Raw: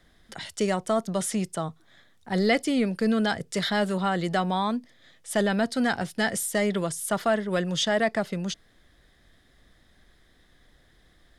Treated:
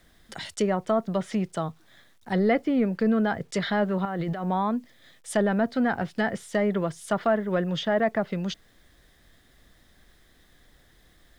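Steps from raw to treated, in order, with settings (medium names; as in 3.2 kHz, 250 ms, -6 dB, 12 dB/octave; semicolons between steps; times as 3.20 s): low-pass that closes with the level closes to 1.6 kHz, closed at -21.5 dBFS; 4.05–4.47 s: compressor with a negative ratio -31 dBFS, ratio -1; bit crusher 11-bit; trim +1 dB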